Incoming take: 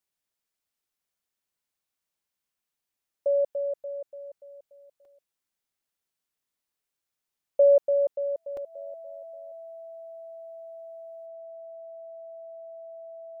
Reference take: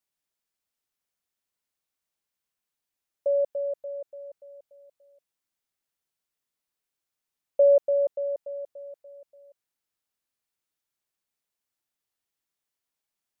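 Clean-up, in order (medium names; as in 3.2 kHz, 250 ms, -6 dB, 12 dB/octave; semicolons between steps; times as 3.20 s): band-stop 660 Hz, Q 30; interpolate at 5.05/7.02/8.57 s, 2.8 ms; trim 0 dB, from 11.26 s +10.5 dB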